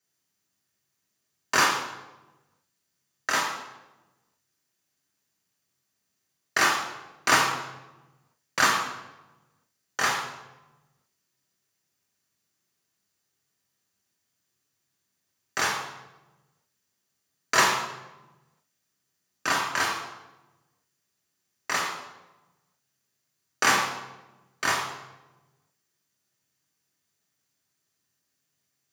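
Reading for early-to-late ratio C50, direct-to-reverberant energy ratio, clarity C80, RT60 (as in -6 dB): 4.0 dB, -1.0 dB, 6.5 dB, 1.1 s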